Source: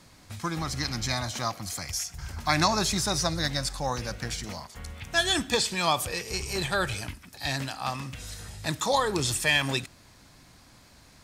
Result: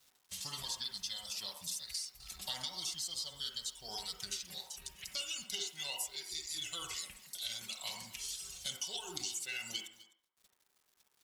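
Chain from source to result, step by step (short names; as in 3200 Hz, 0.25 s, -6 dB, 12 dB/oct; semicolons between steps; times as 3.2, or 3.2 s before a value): gate -51 dBFS, range -14 dB; pre-emphasis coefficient 0.8; reverb removal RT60 0.79 s; resonant high shelf 2600 Hz +9 dB, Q 1.5; comb 4.5 ms, depth 52%; compressor 8:1, threshold -34 dBFS, peak gain reduction 17.5 dB; pitch shift -3 st; requantised 10-bit, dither none; echo 0.255 s -19.5 dB; on a send at -2 dB: reverb RT60 0.50 s, pre-delay 47 ms; on the sum: core saturation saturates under 1400 Hz; gain -3.5 dB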